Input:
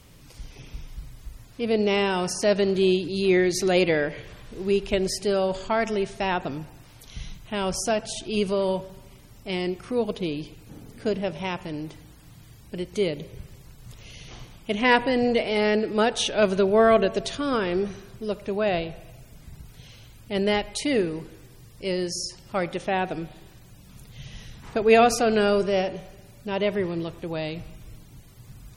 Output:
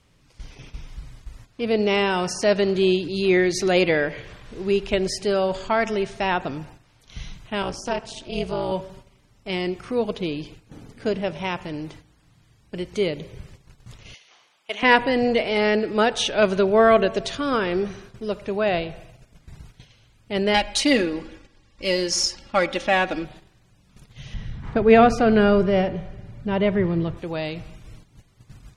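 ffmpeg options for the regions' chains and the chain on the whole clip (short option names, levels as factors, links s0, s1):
-filter_complex "[0:a]asettb=1/sr,asplit=3[s0][s1][s2];[s0]atrim=end=7.624[s3];[s1]atrim=start=7.62:end=8.72,asetpts=PTS-STARTPTS,afade=t=in:d=0.004:c=qsin,afade=t=out:st=1.096:d=0.004:c=qsin,bandreject=f=361.2:t=h:w=4,bandreject=f=722.4:t=h:w=4,bandreject=f=1083.6:t=h:w=4,bandreject=f=1444.8:t=h:w=4,bandreject=f=1806:t=h:w=4,acrossover=split=5300[s4][s5];[s5]acompressor=threshold=0.0158:ratio=4:attack=1:release=60[s6];[s4][s6]amix=inputs=2:normalize=0,tremolo=f=250:d=0.947[s7];[s2]atrim=start=8.716[s8];[s3][s7]acrossfade=d=0.004:c1=hsin:c2=qsin[s9];[s9][s8]acrossfade=d=0.004:c1=qsin:c2=hsin,asettb=1/sr,asplit=3[s10][s11][s12];[s10]atrim=end=14.144[s13];[s11]atrim=start=14.14:end=14.83,asetpts=PTS-STARTPTS,afade=t=in:d=0.004:c=qsin,afade=t=out:st=0.686:d=0.004:c=qsin,highpass=680,acrusher=bits=8:mode=log:mix=0:aa=0.000001[s14];[s12]atrim=start=14.826[s15];[s13][s14]acrossfade=d=0.004:c1=hsin:c2=qsin[s16];[s16][s15]acrossfade=d=0.004:c1=qsin:c2=hsin,asettb=1/sr,asplit=3[s17][s18][s19];[s17]atrim=end=20.544[s20];[s18]atrim=start=20.54:end=23.25,asetpts=PTS-STARTPTS,afade=t=in:d=0.004:c=qsin,afade=t=out:st=2.706:d=0.004:c=qsin,highshelf=f=2400:g=9,adynamicsmooth=sensitivity=8:basefreq=4000,aecho=1:1:3.6:0.72,atrim=end_sample=119511[s21];[s19]atrim=start=23.246[s22];[s20][s21]acrossfade=d=0.004:c1=hsin:c2=qsin[s23];[s23][s22]acrossfade=d=0.004:c1=qsin:c2=hsin,asettb=1/sr,asplit=3[s24][s25][s26];[s24]atrim=end=24.344[s27];[s25]atrim=start=24.34:end=27.17,asetpts=PTS-STARTPTS,afade=t=in:d=0.004:c=qsin,afade=t=out:st=2.826:d=0.004:c=qsin,bass=f=250:g=10,treble=f=4000:g=-12,bandreject=f=2600:w=14[s28];[s26]atrim=start=27.166[s29];[s27][s28]acrossfade=d=0.004:c1=hsin:c2=qsin[s30];[s30][s29]acrossfade=d=0.004:c1=qsin:c2=hsin,agate=range=0.316:threshold=0.00631:ratio=16:detection=peak,lowpass=8300,equalizer=f=1500:w=0.63:g=3,volume=1.12"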